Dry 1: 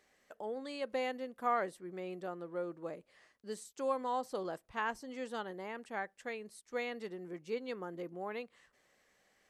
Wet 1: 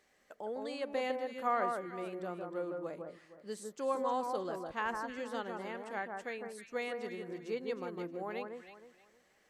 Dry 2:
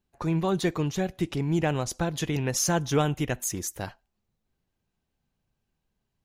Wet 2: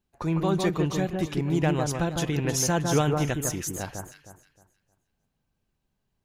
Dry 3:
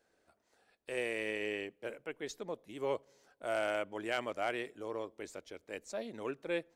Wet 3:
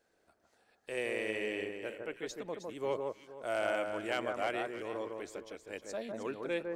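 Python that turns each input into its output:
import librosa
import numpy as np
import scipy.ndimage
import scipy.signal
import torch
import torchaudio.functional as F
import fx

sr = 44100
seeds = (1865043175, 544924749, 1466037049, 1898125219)

y = fx.echo_alternate(x, sr, ms=156, hz=1600.0, feedback_pct=51, wet_db=-3.5)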